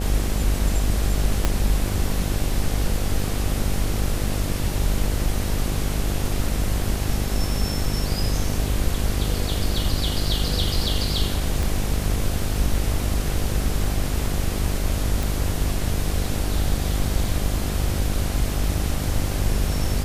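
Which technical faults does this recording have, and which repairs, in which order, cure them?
buzz 50 Hz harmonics 16 -26 dBFS
1.45 s: pop -5 dBFS
11.63 s: pop
15.23 s: pop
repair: de-click; de-hum 50 Hz, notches 16

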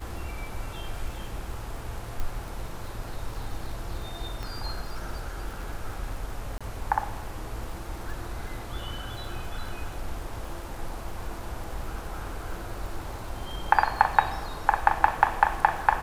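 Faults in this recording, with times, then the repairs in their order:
crackle 58 per s -37 dBFS
2.20 s: pop -19 dBFS
4.43 s: pop
6.58–6.61 s: dropout 26 ms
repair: de-click; interpolate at 6.58 s, 26 ms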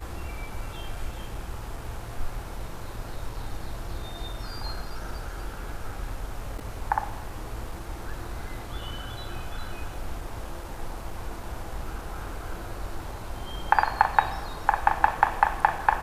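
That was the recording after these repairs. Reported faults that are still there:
4.43 s: pop

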